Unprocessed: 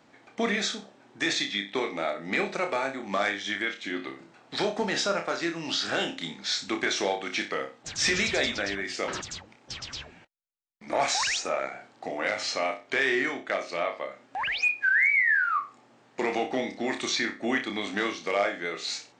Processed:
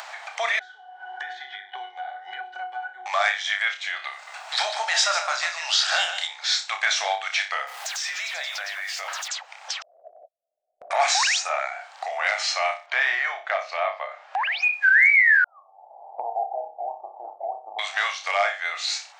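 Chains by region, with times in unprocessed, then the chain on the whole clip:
0:00.59–0:03.06: resonances in every octave F#, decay 0.2 s + multiband upward and downward compressor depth 100%
0:04.12–0:06.27: high-pass filter 440 Hz + high-shelf EQ 7,200 Hz +9.5 dB + single-tap delay 148 ms −9.5 dB
0:07.67–0:09.28: converter with a step at zero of −41.5 dBFS + downward compressor 3 to 1, threshold −37 dBFS
0:09.82–0:10.91: Butterworth low-pass 680 Hz 96 dB per octave + parametric band 88 Hz −14.5 dB 1.1 octaves + downward compressor 2 to 1, threshold −55 dBFS
0:12.86–0:14.73: low-pass filter 6,200 Hz + spectral tilt −2.5 dB per octave
0:15.44–0:17.79: Butterworth low-pass 870 Hz 72 dB per octave + parametric band 93 Hz +9 dB 1.3 octaves
whole clip: elliptic high-pass filter 690 Hz, stop band 60 dB; upward compression, threshold −32 dBFS; level +6.5 dB

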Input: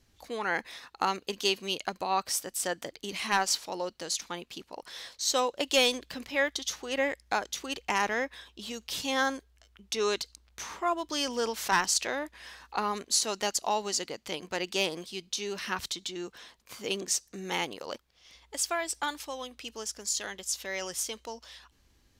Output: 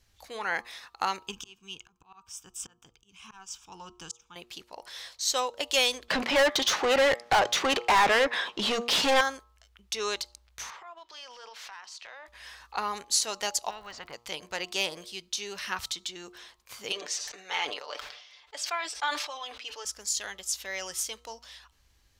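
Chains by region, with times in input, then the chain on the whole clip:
0:01.27–0:04.36: low-shelf EQ 260 Hz +10 dB + volume swells 757 ms + phaser with its sweep stopped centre 2,900 Hz, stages 8
0:06.08–0:09.21: high-pass filter 180 Hz 24 dB per octave + spectral tilt −4 dB per octave + mid-hump overdrive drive 30 dB, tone 4,400 Hz, clips at −13 dBFS
0:10.70–0:12.28: three-way crossover with the lows and the highs turned down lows −23 dB, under 480 Hz, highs −18 dB, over 5,200 Hz + downward compressor 16 to 1, threshold −39 dBFS + transient designer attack −10 dB, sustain +1 dB
0:13.69–0:14.12: low-pass filter 1,200 Hz + surface crackle 150 per second −58 dBFS + every bin compressed towards the loudest bin 4 to 1
0:16.92–0:19.85: three-way crossover with the lows and the highs turned down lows −23 dB, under 380 Hz, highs −18 dB, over 5,700 Hz + comb filter 6.8 ms, depth 57% + level that may fall only so fast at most 58 dB per second
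whole clip: parametric band 260 Hz −10 dB 1.7 octaves; hum removal 118.7 Hz, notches 11; level +1 dB

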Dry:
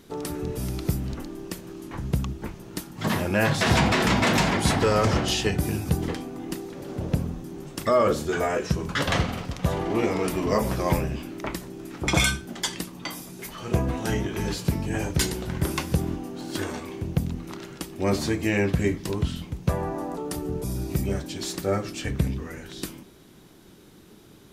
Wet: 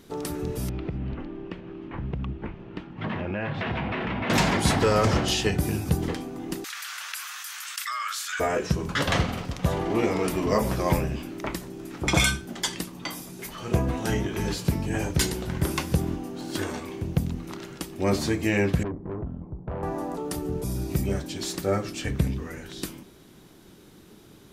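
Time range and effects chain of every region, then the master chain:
0:00.69–0:04.30: Chebyshev low-pass filter 2,800 Hz, order 3 + downward compressor 5 to 1, threshold −26 dBFS
0:06.64–0:08.40: Butterworth high-pass 1,300 Hz + envelope flattener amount 70%
0:18.83–0:19.83: low-pass filter 1,000 Hz 24 dB per octave + tube saturation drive 28 dB, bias 0.4
whole clip: no processing

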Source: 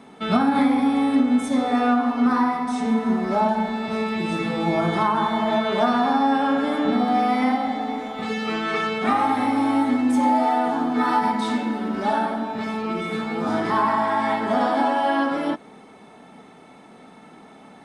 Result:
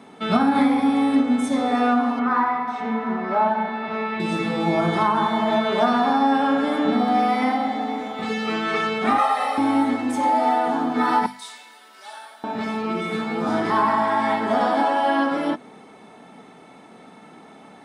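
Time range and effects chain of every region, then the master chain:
0:02.19–0:04.20: low-pass filter 1,800 Hz + tilt shelving filter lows −7 dB, about 730 Hz
0:09.18–0:09.58: high-pass filter 540 Hz + comb filter 1.6 ms, depth 93%
0:11.26–0:12.44: high-pass filter 440 Hz + first difference
whole clip: high-pass filter 74 Hz; mains-hum notches 50/100/150/200/250 Hz; level +1 dB

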